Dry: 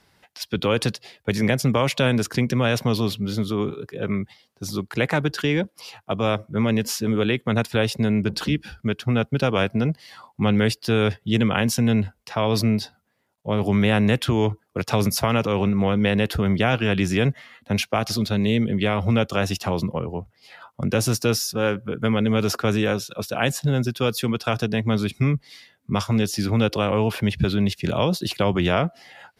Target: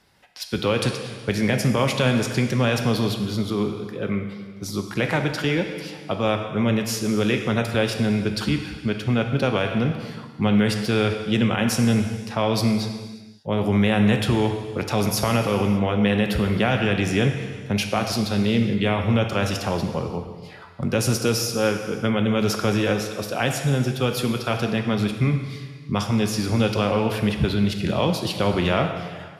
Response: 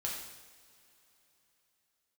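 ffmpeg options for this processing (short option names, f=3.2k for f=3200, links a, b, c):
-filter_complex "[0:a]asplit=2[a][b];[1:a]atrim=start_sample=2205,afade=t=out:st=0.39:d=0.01,atrim=end_sample=17640,asetrate=24696,aresample=44100[c];[b][c]afir=irnorm=-1:irlink=0,volume=-7dB[d];[a][d]amix=inputs=2:normalize=0,alimiter=level_in=4.5dB:limit=-1dB:release=50:level=0:latency=1,volume=-8.5dB"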